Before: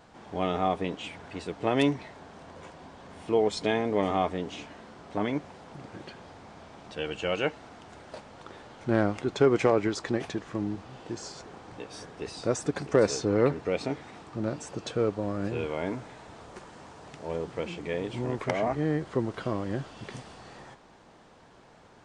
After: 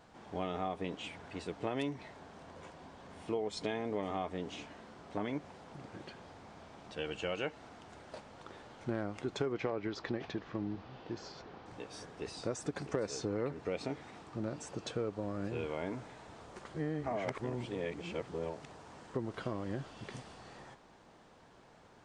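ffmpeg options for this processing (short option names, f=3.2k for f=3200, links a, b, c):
-filter_complex "[0:a]asettb=1/sr,asplit=3[a][b][c];[a]atrim=end=9.524[d];[b]atrim=start=9.52:end=11.66,asetpts=PTS-STARTPTS,afade=t=in:d=0.004:c=qsin,afade=t=out:st=2.136:d=0.004:c=qsin,lowpass=f=5k:w=0.5412,lowpass=f=5k:w=1.3066[e];[c]atrim=start=11.656[f];[d][e]acrossfade=d=0.004:c1=hsin:c2=qsin[g];[g][f]acrossfade=d=0.004:c1=qsin:c2=hsin,asplit=3[h][i][j];[h]atrim=end=16.652[k];[i]atrim=start=16.648:end=19.142,asetpts=PTS-STARTPTS,areverse[l];[j]atrim=start=19.138[m];[k][l]acrossfade=d=0.004:c1=hsin:c2=hsin[n];[n][m]acrossfade=d=0.004:c1=hsin:c2=hsin,acompressor=threshold=-27dB:ratio=5,volume=-5dB"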